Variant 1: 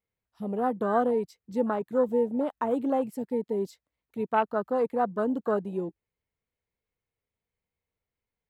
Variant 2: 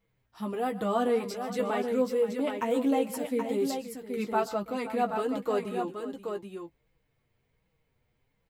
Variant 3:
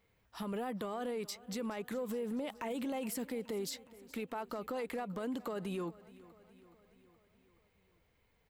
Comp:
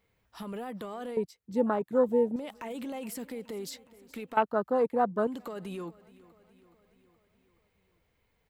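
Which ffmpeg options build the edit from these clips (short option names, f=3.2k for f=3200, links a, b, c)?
-filter_complex "[0:a]asplit=2[a][b];[2:a]asplit=3[c][d][e];[c]atrim=end=1.172[f];[a]atrim=start=1.168:end=2.362[g];[d]atrim=start=2.358:end=4.372[h];[b]atrim=start=4.368:end=5.272[i];[e]atrim=start=5.268[j];[f][g]acrossfade=d=0.004:c1=hsin:c2=hsin[k];[k][h]acrossfade=d=0.004:c1=hsin:c2=hsin[l];[l][i]acrossfade=d=0.004:c1=hsin:c2=hsin[m];[m][j]acrossfade=d=0.004:c1=hsin:c2=hsin"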